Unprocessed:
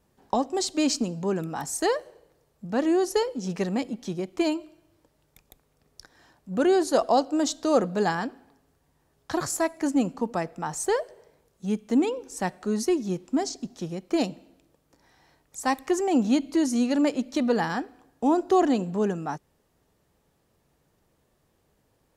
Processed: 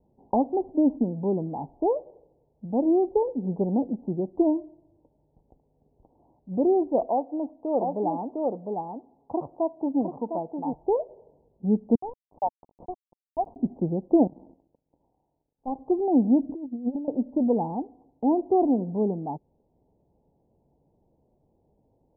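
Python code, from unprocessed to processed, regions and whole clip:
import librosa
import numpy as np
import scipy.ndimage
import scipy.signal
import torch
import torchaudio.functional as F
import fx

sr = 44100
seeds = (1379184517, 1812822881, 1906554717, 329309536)

y = fx.chain(x, sr, fx.tilt_eq(slope=3.0),
    fx.echo_single(ms=706, db=-5.0), at=(7.08, 10.73))
y = fx.chain(y, sr, fx.highpass(hz=650.0, slope=24),
    fx.sample_gate(floor_db=-33.5), at=(11.95, 13.56))
y = fx.chain(y, sr, fx.power_curve(exponent=2.0),
    fx.sustainer(db_per_s=23.0), at=(14.27, 15.76))
y = fx.chain(y, sr, fx.high_shelf_res(hz=2300.0, db=13.0, q=3.0),
    fx.over_compress(threshold_db=-28.0, ratio=-0.5), at=(16.49, 17.08))
y = fx.rider(y, sr, range_db=10, speed_s=2.0)
y = scipy.signal.sosfilt(scipy.signal.butter(12, 920.0, 'lowpass', fs=sr, output='sos'), y)
y = fx.peak_eq(y, sr, hz=260.0, db=2.5, octaves=0.77)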